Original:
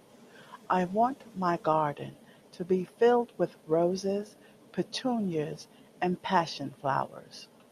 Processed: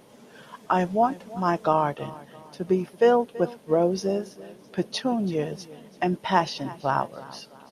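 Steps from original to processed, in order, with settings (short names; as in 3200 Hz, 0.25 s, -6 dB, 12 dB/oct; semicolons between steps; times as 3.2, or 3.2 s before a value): feedback echo 0.331 s, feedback 39%, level -19 dB; gain +4.5 dB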